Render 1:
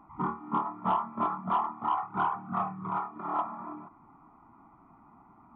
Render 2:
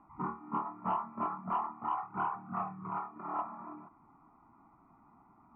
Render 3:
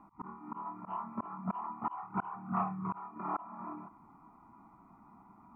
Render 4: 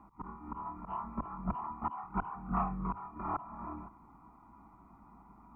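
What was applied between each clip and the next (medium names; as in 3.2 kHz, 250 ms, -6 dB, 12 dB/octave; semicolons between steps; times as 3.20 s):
steep low-pass 2.9 kHz 96 dB/octave; trim -5.5 dB
small resonant body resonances 200/980/2400 Hz, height 7 dB, ringing for 90 ms; slow attack 282 ms; trim +2.5 dB
octave divider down 2 oct, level -2 dB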